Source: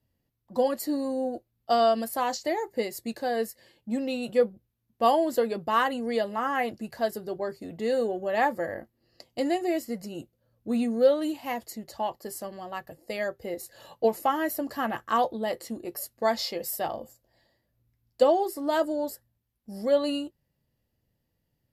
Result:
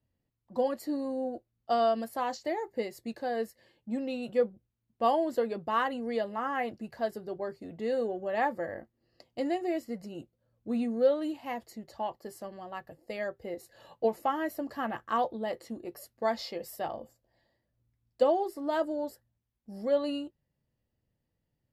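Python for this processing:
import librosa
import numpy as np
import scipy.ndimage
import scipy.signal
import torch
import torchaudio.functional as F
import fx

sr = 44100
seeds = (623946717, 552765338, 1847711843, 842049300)

y = fx.high_shelf(x, sr, hz=5400.0, db=-11.5)
y = F.gain(torch.from_numpy(y), -4.0).numpy()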